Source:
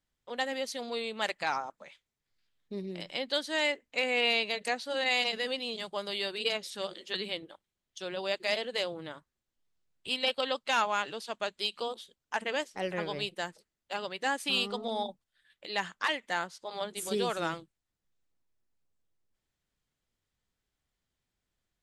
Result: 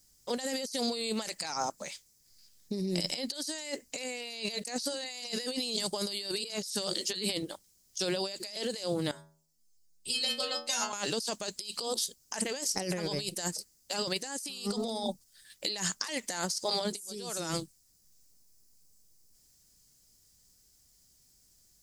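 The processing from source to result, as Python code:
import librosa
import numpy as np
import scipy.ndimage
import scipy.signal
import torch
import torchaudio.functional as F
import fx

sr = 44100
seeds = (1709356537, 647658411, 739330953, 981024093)

y = fx.stiff_resonator(x, sr, f0_hz=78.0, decay_s=0.53, stiffness=0.002, at=(9.11, 10.93))
y = fx.curve_eq(y, sr, hz=(200.0, 1300.0, 3500.0, 5000.0), db=(0, -8, -4, 14))
y = fx.over_compress(y, sr, threshold_db=-42.0, ratio=-1.0)
y = y * 10.0 ** (6.5 / 20.0)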